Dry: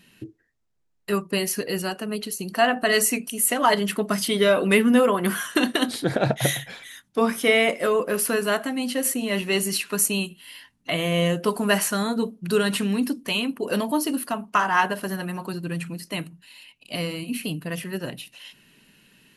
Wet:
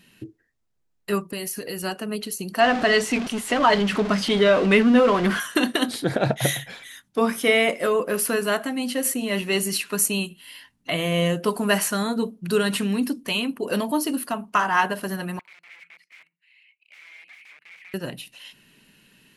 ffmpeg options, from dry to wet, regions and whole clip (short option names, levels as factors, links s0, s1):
-filter_complex "[0:a]asettb=1/sr,asplit=3[s0][s1][s2];[s0]atrim=end=1.284[s3];[s1]atrim=start=1.28:end=1.83,asetpts=PTS-STARTPTS,afade=t=in:d=0.004:c=qsin,afade=t=out:st=0.546:d=0.004:c=qsin,highshelf=f=8900:g=9.5,acompressor=threshold=0.0398:ratio=4:attack=3.2:release=140:knee=1:detection=peak[s4];[s2]atrim=start=1.826[s5];[s3][s4]acrossfade=d=0.004:c1=hsin:c2=qsin[s6];[s6][s5]acrossfade=d=0.004:c1=qsin:c2=hsin,asettb=1/sr,asplit=3[s7][s8][s9];[s7]atrim=end=2.604[s10];[s8]atrim=start=2.6:end=5.4,asetpts=PTS-STARTPTS,afade=t=in:d=0.004:c=qsin,afade=t=out:st=2.796:d=0.004:c=qsin,aeval=exprs='val(0)+0.5*0.0631*sgn(val(0))':c=same,lowpass=4600[s11];[s9]atrim=start=5.396[s12];[s10][s11]acrossfade=d=0.004:c1=hsin:c2=qsin[s13];[s13][s12]acrossfade=d=0.004:c1=qsin:c2=hsin,asettb=1/sr,asplit=3[s14][s15][s16];[s14]atrim=end=15.394[s17];[s15]atrim=start=15.39:end=17.94,asetpts=PTS-STARTPTS,afade=t=in:d=0.004:c=qsin,afade=t=out:st=2.546:d=0.004:c=qsin,aeval=exprs='(mod(28.2*val(0)+1,2)-1)/28.2':c=same,bandpass=f=2200:t=q:w=8.1[s18];[s16]atrim=start=17.936[s19];[s17][s18]acrossfade=d=0.004:c1=hsin:c2=qsin[s20];[s20][s19]acrossfade=d=0.004:c1=qsin:c2=hsin"